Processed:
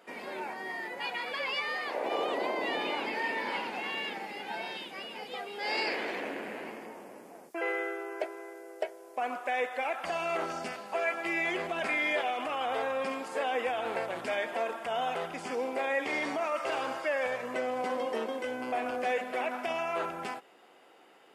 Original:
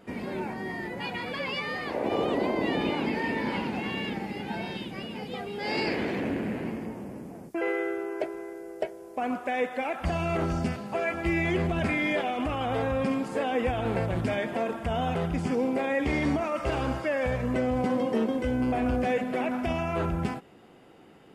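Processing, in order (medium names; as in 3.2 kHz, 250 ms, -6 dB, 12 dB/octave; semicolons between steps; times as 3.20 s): high-pass 560 Hz 12 dB/octave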